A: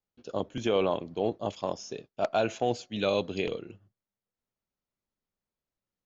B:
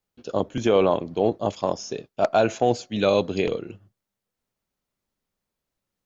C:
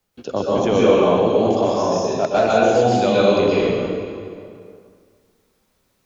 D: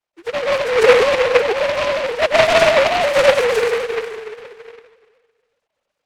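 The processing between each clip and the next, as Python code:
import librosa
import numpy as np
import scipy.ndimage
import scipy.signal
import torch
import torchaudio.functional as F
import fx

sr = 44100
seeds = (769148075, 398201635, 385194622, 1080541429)

y1 = fx.dynamic_eq(x, sr, hz=3000.0, q=1.7, threshold_db=-51.0, ratio=4.0, max_db=-5)
y1 = y1 * 10.0 ** (7.5 / 20.0)
y2 = fx.rev_plate(y1, sr, seeds[0], rt60_s=1.7, hf_ratio=0.75, predelay_ms=110, drr_db=-7.5)
y2 = fx.band_squash(y2, sr, depth_pct=40)
y2 = y2 * 10.0 ** (-2.0 / 20.0)
y3 = fx.sine_speech(y2, sr)
y3 = fx.noise_mod_delay(y3, sr, seeds[1], noise_hz=1500.0, depth_ms=0.14)
y3 = y3 * 10.0 ** (1.5 / 20.0)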